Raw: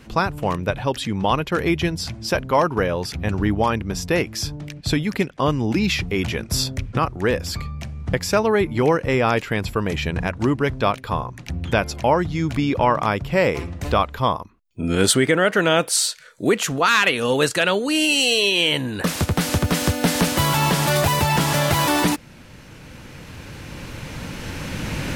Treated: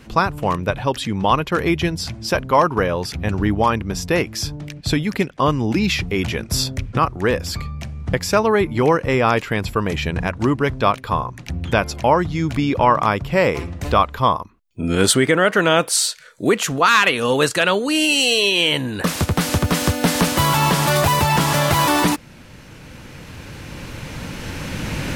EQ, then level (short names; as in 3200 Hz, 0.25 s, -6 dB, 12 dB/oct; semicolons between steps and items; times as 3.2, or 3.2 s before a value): dynamic EQ 1100 Hz, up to +4 dB, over -33 dBFS, Q 3; +1.5 dB